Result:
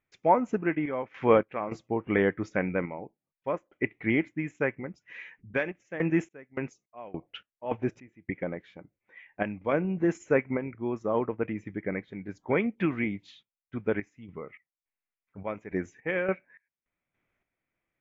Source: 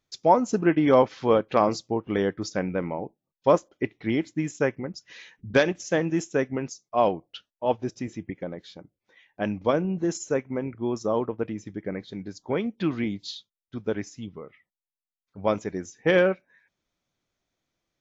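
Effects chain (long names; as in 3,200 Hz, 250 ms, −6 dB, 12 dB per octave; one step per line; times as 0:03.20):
high shelf with overshoot 3,200 Hz −12.5 dB, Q 3
sample-and-hold tremolo 3.5 Hz, depth 95%
level +1.5 dB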